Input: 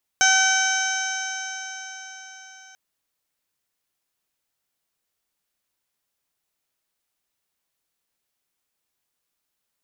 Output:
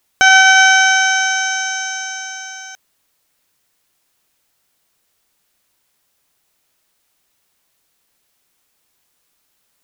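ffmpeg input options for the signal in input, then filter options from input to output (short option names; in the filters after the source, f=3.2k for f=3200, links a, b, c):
-f lavfi -i "aevalsrc='0.0794*pow(10,-3*t/4.76)*sin(2*PI*762.3*t)+0.141*pow(10,-3*t/4.76)*sin(2*PI*1526.44*t)+0.0562*pow(10,-3*t/4.76)*sin(2*PI*2294.21*t)+0.0531*pow(10,-3*t/4.76)*sin(2*PI*3067.45*t)+0.0335*pow(10,-3*t/4.76)*sin(2*PI*3847.91*t)+0.00891*pow(10,-3*t/4.76)*sin(2*PI*4637.37*t)+0.0596*pow(10,-3*t/4.76)*sin(2*PI*5437.54*t)+0.112*pow(10,-3*t/4.76)*sin(2*PI*6250.11*t)+0.0158*pow(10,-3*t/4.76)*sin(2*PI*7076.71*t)+0.00944*pow(10,-3*t/4.76)*sin(2*PI*7918.94*t)':d=2.54:s=44100"
-filter_complex "[0:a]acrossover=split=4300[a][b];[b]acompressor=threshold=-38dB:ratio=4:attack=1:release=60[c];[a][c]amix=inputs=2:normalize=0,alimiter=level_in=14dB:limit=-1dB:release=50:level=0:latency=1"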